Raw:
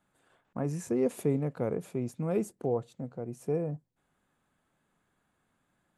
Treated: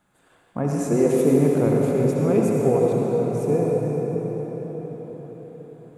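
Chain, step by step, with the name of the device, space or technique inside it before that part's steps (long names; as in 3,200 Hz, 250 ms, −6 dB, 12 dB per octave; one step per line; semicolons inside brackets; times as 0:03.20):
cathedral (convolution reverb RT60 5.7 s, pre-delay 58 ms, DRR −3 dB)
level +7.5 dB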